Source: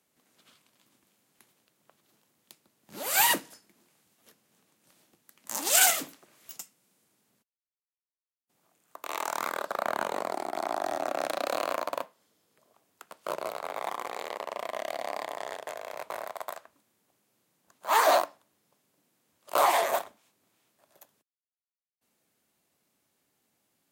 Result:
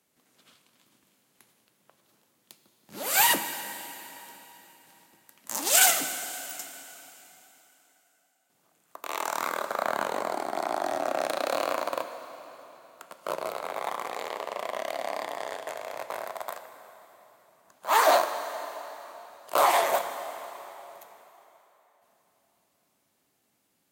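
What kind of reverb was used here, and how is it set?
dense smooth reverb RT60 3.7 s, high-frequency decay 0.9×, DRR 8.5 dB
level +1.5 dB

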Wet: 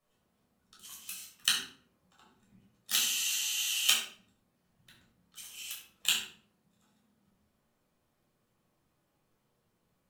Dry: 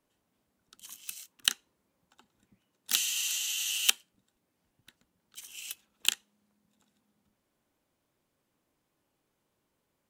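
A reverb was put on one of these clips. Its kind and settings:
rectangular room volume 750 cubic metres, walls furnished, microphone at 6.1 metres
level −6.5 dB

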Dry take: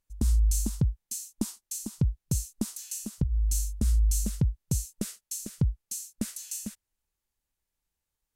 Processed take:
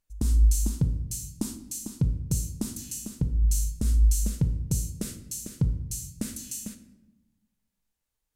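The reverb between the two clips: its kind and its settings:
rectangular room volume 370 cubic metres, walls mixed, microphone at 0.5 metres

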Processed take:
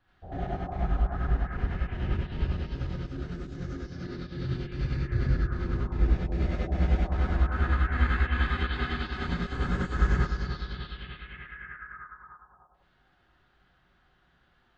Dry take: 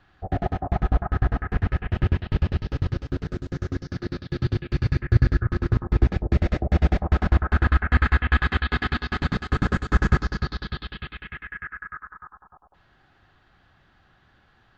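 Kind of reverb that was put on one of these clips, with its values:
reverb whose tail is shaped and stops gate 110 ms rising, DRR −7 dB
level −13.5 dB

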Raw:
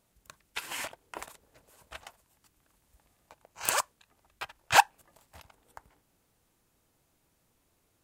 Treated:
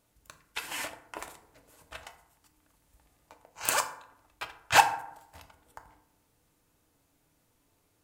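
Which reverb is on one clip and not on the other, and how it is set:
feedback delay network reverb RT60 0.73 s, low-frequency decay 1.1×, high-frequency decay 0.5×, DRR 5.5 dB

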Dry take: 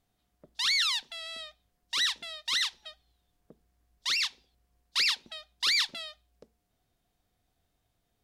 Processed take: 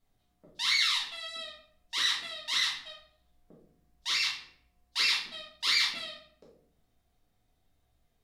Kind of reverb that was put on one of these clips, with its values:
rectangular room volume 100 cubic metres, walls mixed, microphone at 1.6 metres
level −6.5 dB

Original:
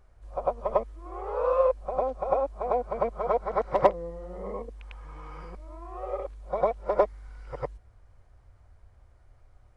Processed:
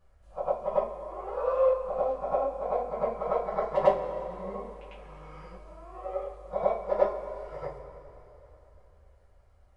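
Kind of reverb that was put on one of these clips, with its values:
coupled-rooms reverb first 0.27 s, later 3.3 s, from −18 dB, DRR −8 dB
level −10.5 dB

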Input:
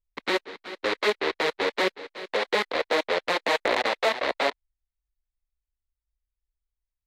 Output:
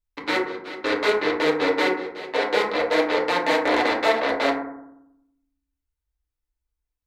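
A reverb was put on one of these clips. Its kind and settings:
feedback delay network reverb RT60 0.78 s, low-frequency decay 1.5×, high-frequency decay 0.3×, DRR −2.5 dB
level −1 dB

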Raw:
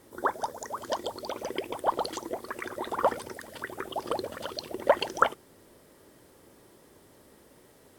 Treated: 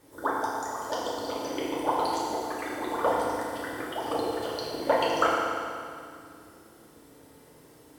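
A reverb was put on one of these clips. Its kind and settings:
feedback delay network reverb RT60 2.3 s, low-frequency decay 1×, high-frequency decay 0.9×, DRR −6 dB
level −4.5 dB

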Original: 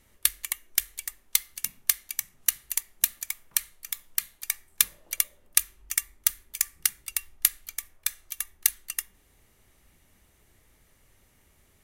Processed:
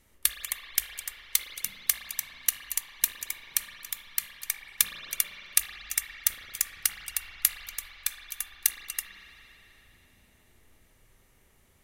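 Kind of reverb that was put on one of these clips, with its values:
spring reverb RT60 3.5 s, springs 36/56 ms, chirp 25 ms, DRR 2.5 dB
level −2 dB

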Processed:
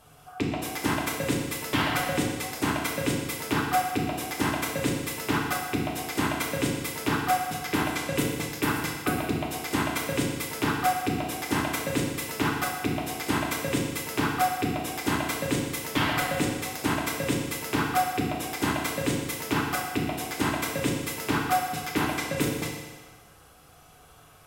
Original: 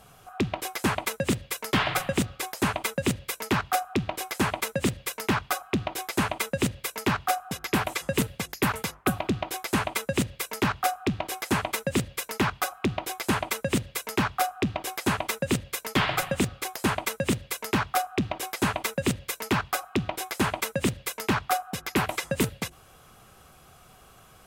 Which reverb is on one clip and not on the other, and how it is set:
feedback delay network reverb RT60 1.4 s, low-frequency decay 0.8×, high-frequency decay 0.95×, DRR −2.5 dB
level −4.5 dB

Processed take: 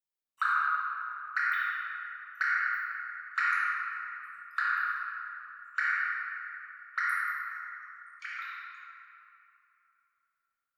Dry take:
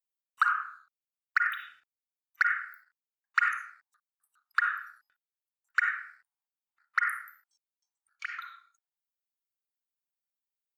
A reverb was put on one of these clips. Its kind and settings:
rectangular room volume 160 cubic metres, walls hard, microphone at 1.1 metres
level −7 dB

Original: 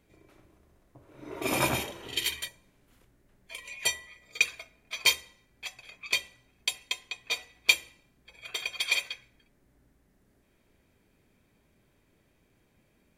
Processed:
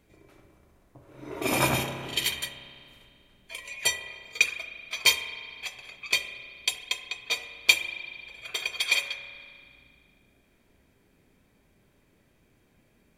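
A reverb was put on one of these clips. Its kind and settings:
spring reverb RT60 2.3 s, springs 30 ms, chirp 45 ms, DRR 9 dB
level +2.5 dB

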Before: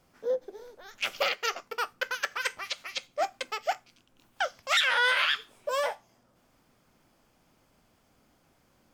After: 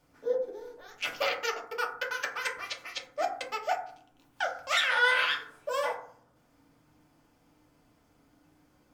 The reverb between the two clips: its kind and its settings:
feedback delay network reverb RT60 0.57 s, low-frequency decay 1.55×, high-frequency decay 0.3×, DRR −0.5 dB
level −4 dB

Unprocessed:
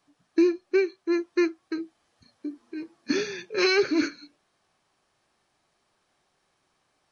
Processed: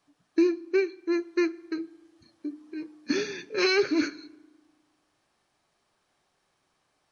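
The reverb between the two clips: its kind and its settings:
feedback delay network reverb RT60 1.2 s, low-frequency decay 1.35×, high-frequency decay 0.65×, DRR 19 dB
level −1.5 dB

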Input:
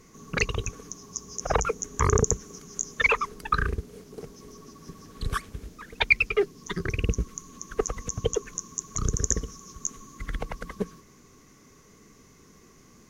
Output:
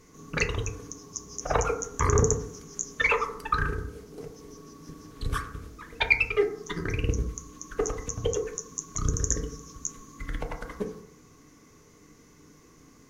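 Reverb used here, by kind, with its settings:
feedback delay network reverb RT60 0.7 s, low-frequency decay 0.95×, high-frequency decay 0.3×, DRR 3 dB
level −2.5 dB

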